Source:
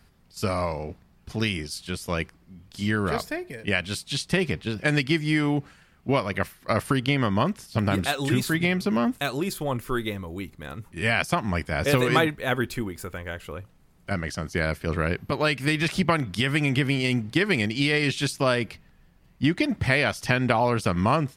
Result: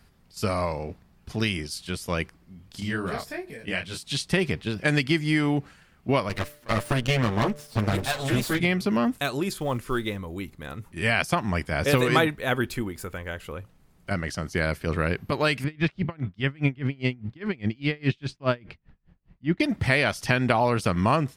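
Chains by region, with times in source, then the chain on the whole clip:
0:02.80–0:04.03: upward compression, threshold −32 dBFS + micro pitch shift up and down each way 50 cents
0:06.29–0:08.60: lower of the sound and its delayed copy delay 8.7 ms + hum removal 147.6 Hz, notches 4
0:09.51–0:10.17: low-pass filter 11,000 Hz + floating-point word with a short mantissa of 4 bits
0:15.64–0:19.60: low-pass filter 3,300 Hz + low-shelf EQ 260 Hz +7.5 dB + tremolo with a sine in dB 4.9 Hz, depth 31 dB
whole clip: no processing

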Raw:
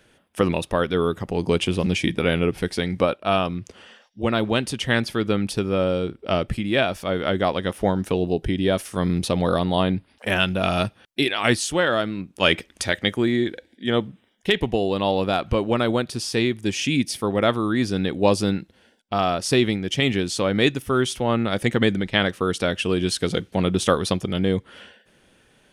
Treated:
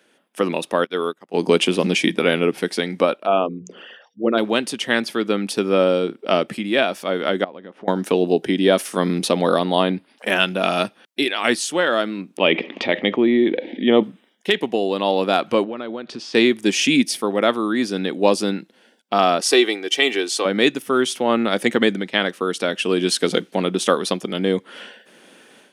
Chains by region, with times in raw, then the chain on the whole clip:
0:00.84–0:01.34: low-shelf EQ 330 Hz −9 dB + expander for the loud parts 2.5 to 1, over −39 dBFS
0:03.26–0:04.38: spectral envelope exaggerated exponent 2 + mains-hum notches 60/120/180/240/300/360/420/480 Hz
0:07.44–0:07.88: head-to-tape spacing loss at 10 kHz 33 dB + downward compressor, threshold −36 dBFS
0:12.37–0:14.03: low-pass filter 2,900 Hz 24 dB per octave + parametric band 1,500 Hz −14 dB 0.51 octaves + envelope flattener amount 50%
0:15.64–0:16.35: downward compressor, threshold −29 dBFS + high-frequency loss of the air 160 metres
0:19.40–0:20.45: high-pass filter 410 Hz + comb filter 2.6 ms, depth 51%
whole clip: high-pass filter 210 Hz 24 dB per octave; automatic gain control; level −1 dB

